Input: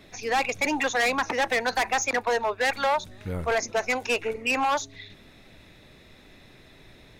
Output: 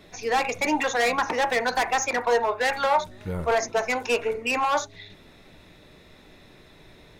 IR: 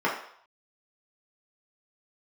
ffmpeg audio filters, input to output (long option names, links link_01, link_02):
-filter_complex "[0:a]asplit=2[link_01][link_02];[1:a]atrim=start_sample=2205,atrim=end_sample=3969,lowpass=frequency=2800:width=0.5412,lowpass=frequency=2800:width=1.3066[link_03];[link_02][link_03]afir=irnorm=-1:irlink=0,volume=-19.5dB[link_04];[link_01][link_04]amix=inputs=2:normalize=0"